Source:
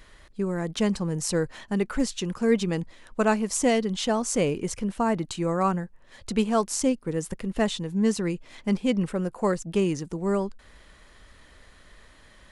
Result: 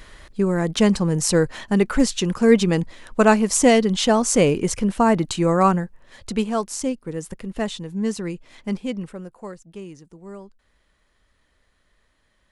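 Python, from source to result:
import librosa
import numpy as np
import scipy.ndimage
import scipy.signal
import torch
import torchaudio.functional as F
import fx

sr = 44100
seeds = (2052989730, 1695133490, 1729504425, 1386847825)

y = fx.gain(x, sr, db=fx.line((5.65, 7.5), (6.68, -1.0), (8.72, -1.0), (9.61, -13.0)))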